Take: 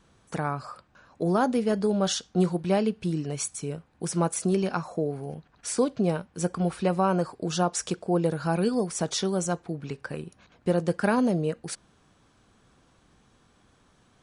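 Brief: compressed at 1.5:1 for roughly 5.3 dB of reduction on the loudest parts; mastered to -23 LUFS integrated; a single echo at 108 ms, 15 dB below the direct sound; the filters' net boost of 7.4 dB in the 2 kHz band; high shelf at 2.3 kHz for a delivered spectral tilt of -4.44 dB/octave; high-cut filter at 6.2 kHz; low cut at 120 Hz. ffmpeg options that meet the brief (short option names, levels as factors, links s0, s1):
-af "highpass=120,lowpass=6200,equalizer=f=2000:t=o:g=8.5,highshelf=f=2300:g=4.5,acompressor=threshold=0.0251:ratio=1.5,aecho=1:1:108:0.178,volume=2.51"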